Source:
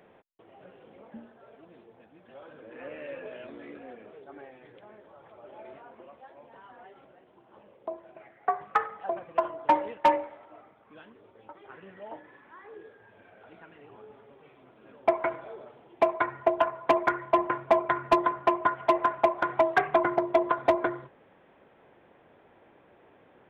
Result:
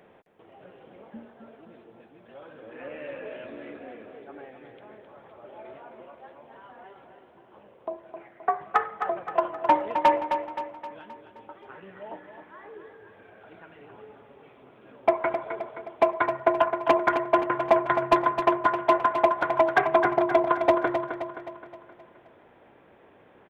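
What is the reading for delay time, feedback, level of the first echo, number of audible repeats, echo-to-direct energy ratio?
262 ms, 50%, -8.0 dB, 5, -7.0 dB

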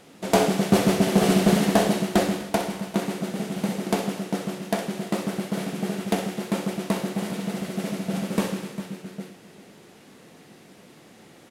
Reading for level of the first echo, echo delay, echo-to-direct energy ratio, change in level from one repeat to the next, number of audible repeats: -10.0 dB, 63 ms, -8.5 dB, no regular repeats, 3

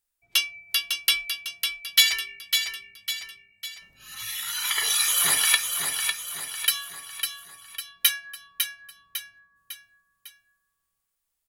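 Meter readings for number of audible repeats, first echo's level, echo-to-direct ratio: 4, -6.0 dB, -5.0 dB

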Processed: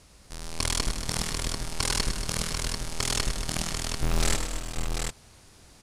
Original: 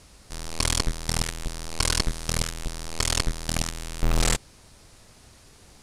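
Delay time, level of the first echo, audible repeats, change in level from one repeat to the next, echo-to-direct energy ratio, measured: 103 ms, -8.0 dB, 5, no regular repeats, -2.0 dB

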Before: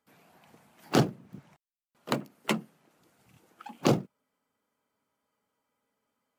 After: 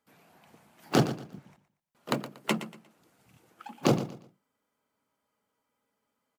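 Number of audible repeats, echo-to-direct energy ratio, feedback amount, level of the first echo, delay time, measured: 2, -12.5 dB, 28%, -13.0 dB, 118 ms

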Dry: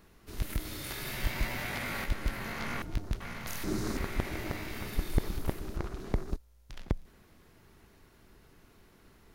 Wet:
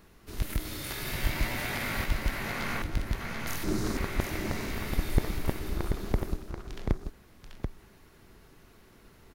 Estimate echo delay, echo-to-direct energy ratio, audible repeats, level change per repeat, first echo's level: 735 ms, -6.0 dB, 1, no regular repeats, -6.0 dB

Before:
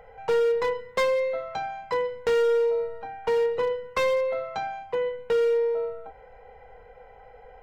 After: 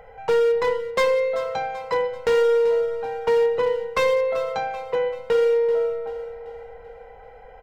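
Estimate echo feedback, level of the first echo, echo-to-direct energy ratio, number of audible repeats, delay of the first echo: 46%, -13.0 dB, -12.0 dB, 4, 386 ms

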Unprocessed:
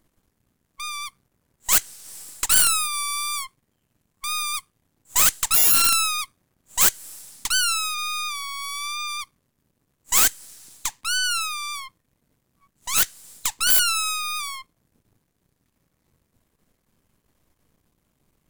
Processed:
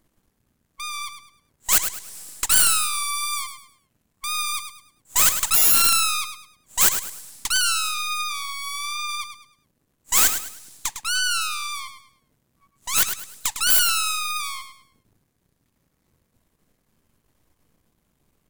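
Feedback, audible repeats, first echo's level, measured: 32%, 3, -9.0 dB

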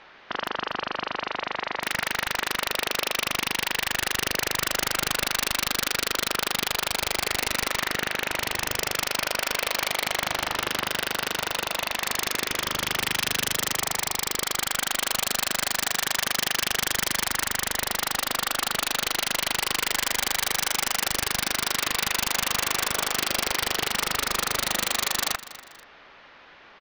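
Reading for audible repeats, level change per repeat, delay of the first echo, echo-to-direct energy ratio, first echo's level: 2, -7.5 dB, 241 ms, -16.0 dB, -16.5 dB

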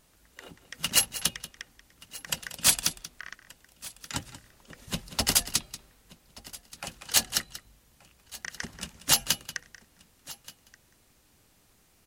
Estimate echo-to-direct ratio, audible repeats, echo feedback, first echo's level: -13.5 dB, 2, no regular repeats, -14.5 dB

